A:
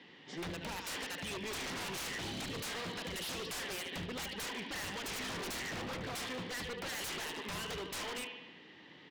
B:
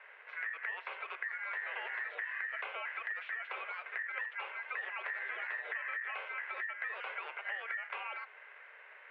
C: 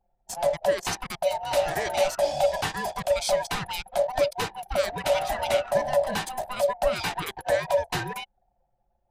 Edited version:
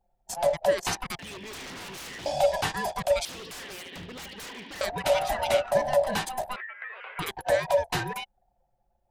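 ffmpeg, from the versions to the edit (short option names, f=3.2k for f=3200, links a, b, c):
-filter_complex "[0:a]asplit=2[a][b];[2:a]asplit=4[c][d][e][f];[c]atrim=end=1.192[g];[a]atrim=start=1.188:end=2.262[h];[d]atrim=start=2.258:end=3.252[i];[b]atrim=start=3.248:end=4.812[j];[e]atrim=start=4.808:end=6.562[k];[1:a]atrim=start=6.558:end=7.192[l];[f]atrim=start=7.188[m];[g][h]acrossfade=d=0.004:c1=hsin:c2=hsin[n];[n][i]acrossfade=d=0.004:c1=hsin:c2=hsin[o];[o][j]acrossfade=d=0.004:c1=hsin:c2=hsin[p];[p][k]acrossfade=d=0.004:c1=hsin:c2=hsin[q];[q][l]acrossfade=d=0.004:c1=hsin:c2=hsin[r];[r][m]acrossfade=d=0.004:c1=hsin:c2=hsin"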